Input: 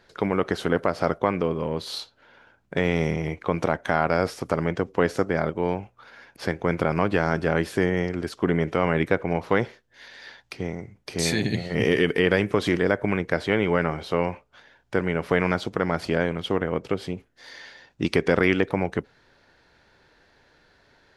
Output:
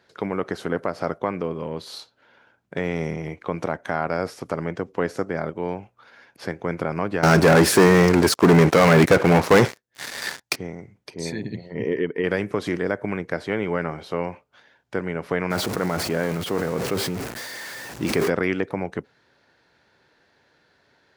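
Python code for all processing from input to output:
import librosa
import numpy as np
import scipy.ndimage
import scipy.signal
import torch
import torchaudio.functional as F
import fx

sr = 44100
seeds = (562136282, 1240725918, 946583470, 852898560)

y = fx.chain(x, sr, fx.high_shelf(hz=3800.0, db=7.0),
    fx.leveller(passes=5), at=(7.23, 10.56))
y = fx.chain(y, sr, fx.envelope_sharpen(power=1.5),
    fx.peak_eq(hz=960.0, db=13.5, octaves=0.27),
    fx.upward_expand(threshold_db=-31.0, expansion=1.5), at=(11.1, 12.24))
y = fx.chain(y, sr, fx.zero_step(step_db=-28.0),
    fx.sustainer(db_per_s=22.0), at=(15.5, 18.3))
y = fx.dynamic_eq(y, sr, hz=3200.0, q=1.9, threshold_db=-43.0, ratio=4.0, max_db=-5)
y = scipy.signal.sosfilt(scipy.signal.butter(2, 96.0, 'highpass', fs=sr, output='sos'), y)
y = F.gain(torch.from_numpy(y), -2.5).numpy()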